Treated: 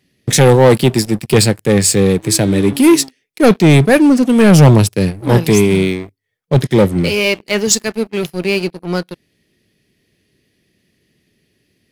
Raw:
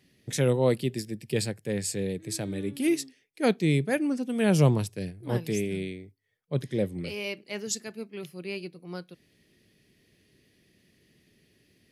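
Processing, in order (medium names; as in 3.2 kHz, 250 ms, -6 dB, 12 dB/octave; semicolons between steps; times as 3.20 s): waveshaping leveller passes 3; trim +8.5 dB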